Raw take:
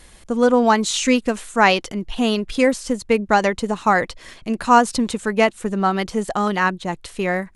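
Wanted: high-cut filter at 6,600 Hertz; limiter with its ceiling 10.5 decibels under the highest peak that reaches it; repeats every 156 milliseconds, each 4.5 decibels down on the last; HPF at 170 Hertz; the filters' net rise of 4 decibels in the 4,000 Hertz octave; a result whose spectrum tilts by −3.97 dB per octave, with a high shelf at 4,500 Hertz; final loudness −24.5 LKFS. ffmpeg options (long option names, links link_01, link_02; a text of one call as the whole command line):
ffmpeg -i in.wav -af "highpass=170,lowpass=6600,equalizer=frequency=4000:width_type=o:gain=7.5,highshelf=frequency=4500:gain=-3.5,alimiter=limit=-10.5dB:level=0:latency=1,aecho=1:1:156|312|468|624|780|936|1092|1248|1404:0.596|0.357|0.214|0.129|0.0772|0.0463|0.0278|0.0167|0.01,volume=-4dB" out.wav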